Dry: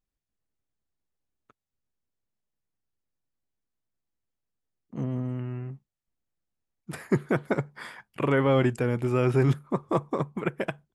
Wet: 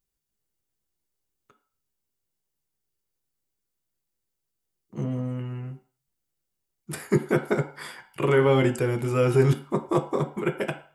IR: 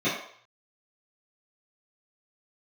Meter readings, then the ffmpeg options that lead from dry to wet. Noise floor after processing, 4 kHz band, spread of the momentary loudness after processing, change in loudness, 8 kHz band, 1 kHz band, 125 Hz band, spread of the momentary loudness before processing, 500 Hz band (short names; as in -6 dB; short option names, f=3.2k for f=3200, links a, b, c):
-82 dBFS, +4.0 dB, 18 LU, +2.5 dB, +8.5 dB, +1.5 dB, +1.5 dB, 18 LU, +3.5 dB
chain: -filter_complex "[0:a]highshelf=f=5k:g=12,asplit=2[a][b];[1:a]atrim=start_sample=2205,asetrate=57330,aresample=44100[c];[b][c]afir=irnorm=-1:irlink=0,volume=-16dB[d];[a][d]amix=inputs=2:normalize=0"